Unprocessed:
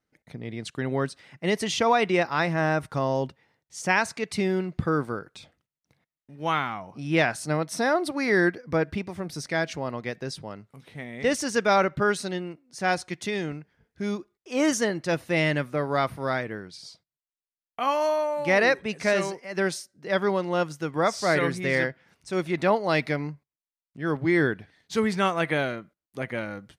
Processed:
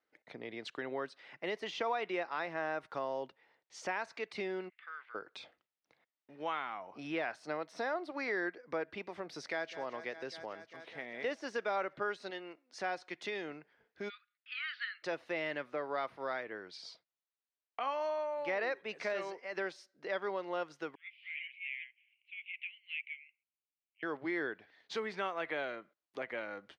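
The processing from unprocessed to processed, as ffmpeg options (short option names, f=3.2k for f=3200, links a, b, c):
-filter_complex "[0:a]asplit=3[a][b][c];[a]afade=t=out:st=4.68:d=0.02[d];[b]asuperpass=centerf=2400:order=4:qfactor=1.9,afade=t=in:st=4.68:d=0.02,afade=t=out:st=5.14:d=0.02[e];[c]afade=t=in:st=5.14:d=0.02[f];[d][e][f]amix=inputs=3:normalize=0,asplit=2[g][h];[h]afade=t=in:st=9.33:d=0.01,afade=t=out:st=9.73:d=0.01,aecho=0:1:200|400|600|800|1000|1200|1400|1600|1800|2000|2200|2400:0.158489|0.126791|0.101433|0.0811465|0.0649172|0.0519338|0.041547|0.0332376|0.0265901|0.0212721|0.0170177|0.0136141[i];[g][i]amix=inputs=2:normalize=0,asettb=1/sr,asplit=3[j][k][l];[j]atrim=end=12.304[m];[k]atrim=start=12.3:end=12.79,asetpts=PTS-STARTPTS,afade=t=in:d=0.004:c=qsin,afade=t=out:st=0.486:d=0.004:c=qsin,lowshelf=f=360:g=-9[n];[l]atrim=start=12.786[o];[m][n]acrossfade=d=0.004:c1=hsin:c2=qsin[p];[p][o]acrossfade=d=0.004:c1=qsin:c2=hsin,asplit=3[q][r][s];[q]afade=t=out:st=14.08:d=0.02[t];[r]asuperpass=centerf=2400:order=20:qfactor=0.76,afade=t=in:st=14.08:d=0.02,afade=t=out:st=15.02:d=0.02[u];[s]afade=t=in:st=15.02:d=0.02[v];[t][u][v]amix=inputs=3:normalize=0,asettb=1/sr,asplit=3[w][x][y];[w]atrim=end=20.954[z];[x]atrim=start=20.95:end=24.03,asetpts=PTS-STARTPTS,afade=t=in:d=0.004:c=qsin,afade=t=out:st=3.076:d=0.004:c=qsin,asuperpass=centerf=2600:order=8:qfactor=2.9[aa];[y]atrim=start=24.026[ab];[z][aa]acrossfade=d=0.004:c1=hsin:c2=qsin[ac];[ac][ab]acrossfade=d=0.004:c1=qsin:c2=hsin,deesser=0.8,acrossover=split=320 4900:gain=0.0794 1 0.0708[ad][ae][af];[ad][ae][af]amix=inputs=3:normalize=0,acompressor=threshold=-42dB:ratio=2"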